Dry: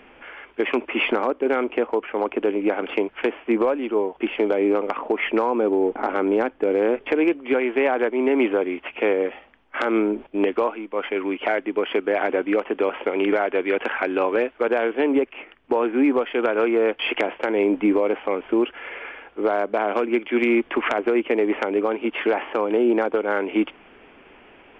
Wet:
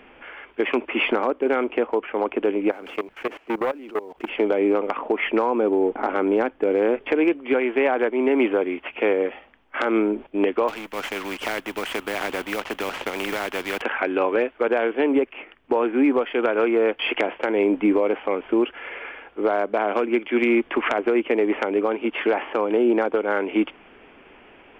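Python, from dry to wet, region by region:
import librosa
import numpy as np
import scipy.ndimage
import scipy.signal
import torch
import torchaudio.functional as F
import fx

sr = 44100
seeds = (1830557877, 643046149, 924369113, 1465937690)

y = fx.chain(x, sr, fx.law_mismatch(coded='mu'),
    fx.level_steps(step_db=19),
    fx.transformer_sat(knee_hz=940.0), at=(2.71, 4.29))
y = fx.chain(y, sr, fx.law_mismatch(coded='A'),
    fx.spectral_comp(ratio=2.0), at=(10.68, 13.82))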